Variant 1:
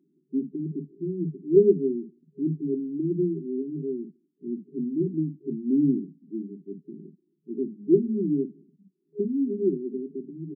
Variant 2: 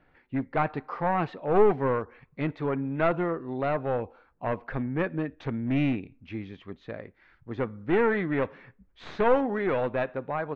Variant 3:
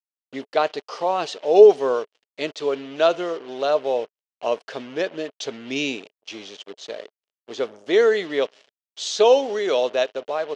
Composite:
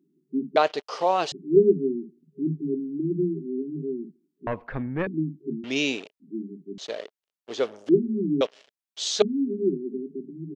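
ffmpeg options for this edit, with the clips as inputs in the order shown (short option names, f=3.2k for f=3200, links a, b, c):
-filter_complex "[2:a]asplit=4[a][b][c][d];[0:a]asplit=6[e][f][g][h][i][j];[e]atrim=end=0.562[k];[a]atrim=start=0.558:end=1.322[l];[f]atrim=start=1.318:end=4.472[m];[1:a]atrim=start=4.468:end=5.072[n];[g]atrim=start=5.068:end=5.642[o];[b]atrim=start=5.638:end=6.202[p];[h]atrim=start=6.198:end=6.782[q];[c]atrim=start=6.778:end=7.892[r];[i]atrim=start=7.888:end=8.412[s];[d]atrim=start=8.408:end=9.222[t];[j]atrim=start=9.218[u];[k][l]acrossfade=d=0.004:c1=hsin:c2=hsin[v];[v][m]acrossfade=d=0.004:c1=hsin:c2=hsin[w];[w][n]acrossfade=d=0.004:c1=hsin:c2=hsin[x];[x][o]acrossfade=d=0.004:c1=hsin:c2=hsin[y];[y][p]acrossfade=d=0.004:c1=hsin:c2=hsin[z];[z][q]acrossfade=d=0.004:c1=hsin:c2=hsin[aa];[aa][r]acrossfade=d=0.004:c1=hsin:c2=hsin[ab];[ab][s]acrossfade=d=0.004:c1=hsin:c2=hsin[ac];[ac][t]acrossfade=d=0.004:c1=hsin:c2=hsin[ad];[ad][u]acrossfade=d=0.004:c1=hsin:c2=hsin"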